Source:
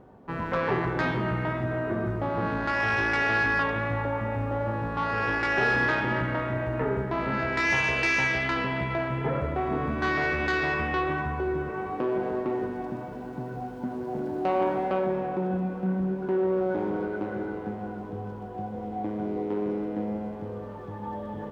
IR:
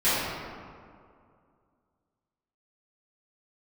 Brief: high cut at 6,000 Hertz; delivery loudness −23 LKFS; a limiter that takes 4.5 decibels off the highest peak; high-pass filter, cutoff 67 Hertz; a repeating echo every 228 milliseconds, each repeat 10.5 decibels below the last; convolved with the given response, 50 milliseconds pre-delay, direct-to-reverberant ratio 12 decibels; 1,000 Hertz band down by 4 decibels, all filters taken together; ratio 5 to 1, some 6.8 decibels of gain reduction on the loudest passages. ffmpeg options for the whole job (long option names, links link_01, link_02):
-filter_complex "[0:a]highpass=67,lowpass=6000,equalizer=frequency=1000:width_type=o:gain=-5.5,acompressor=threshold=-30dB:ratio=5,alimiter=level_in=1dB:limit=-24dB:level=0:latency=1,volume=-1dB,aecho=1:1:228|456|684:0.299|0.0896|0.0269,asplit=2[link_01][link_02];[1:a]atrim=start_sample=2205,adelay=50[link_03];[link_02][link_03]afir=irnorm=-1:irlink=0,volume=-28.5dB[link_04];[link_01][link_04]amix=inputs=2:normalize=0,volume=11dB"